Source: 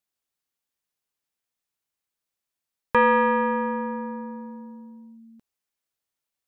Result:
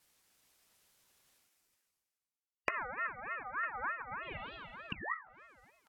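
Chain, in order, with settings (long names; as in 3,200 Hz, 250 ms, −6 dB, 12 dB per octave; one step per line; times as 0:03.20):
on a send: single-tap delay 1,048 ms −13.5 dB
on the sum: downward expander −51 dBFS
reversed playback
upward compression, threshold −40 dBFS
reversed playback
repeating echo 403 ms, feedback 20%, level −4.5 dB
tempo change 1.1×
sound drawn into the spectrogram fall, 0:04.92–0:05.14, 290–1,600 Hz −21 dBFS
multi-voice chorus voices 6, 1.2 Hz, delay 14 ms, depth 3 ms
gain on a spectral selection 0:01.44–0:04.23, 1,400–3,300 Hz −29 dB
downward compressor 8 to 1, threshold −35 dBFS, peak gain reduction 16.5 dB
treble cut that deepens with the level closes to 340 Hz, closed at −39 dBFS
mains-hum notches 50/100/150/200/250/300/350/400/450/500 Hz
ring modulator whose carrier an LFO sweeps 1,300 Hz, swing 25%, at 3.3 Hz
level +9.5 dB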